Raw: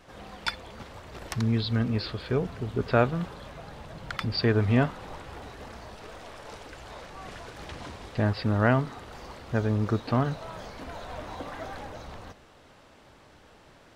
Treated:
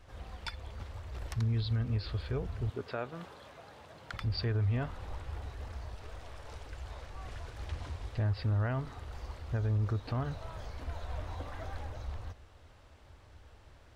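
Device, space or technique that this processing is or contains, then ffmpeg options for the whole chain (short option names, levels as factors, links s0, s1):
car stereo with a boomy subwoofer: -filter_complex "[0:a]lowshelf=f=120:t=q:w=1.5:g=12,alimiter=limit=0.141:level=0:latency=1:release=151,asettb=1/sr,asplit=3[s0][s1][s2];[s0]atrim=end=2.704[s3];[s1]atrim=start=2.7:end=4.14,asetpts=PTS-STARTPTS,afade=t=in:d=0.004:c=qsin,afade=t=out:st=1.436:d=0.004:c=qsin,highpass=240[s4];[s2]atrim=start=4.136[s5];[s3][s4]acrossfade=d=0.004:c1=hsin:c2=qsin[s6];[s6][s5]acrossfade=d=0.004:c1=qsin:c2=hsin,volume=0.447"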